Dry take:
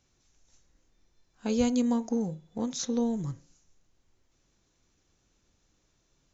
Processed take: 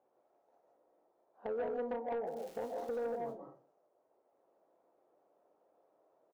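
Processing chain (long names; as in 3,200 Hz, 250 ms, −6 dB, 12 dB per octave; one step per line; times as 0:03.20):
flat-topped band-pass 620 Hz, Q 1.4
double-tracking delay 30 ms −13.5 dB
0:02.26–0:03.16: surface crackle 310 per second −52 dBFS
downward compressor 2.5 to 1, threshold −46 dBFS, peak gain reduction 13 dB
convolution reverb RT60 0.35 s, pre-delay 110 ms, DRR 1 dB
soft clipping −40 dBFS, distortion −14 dB
level +8.5 dB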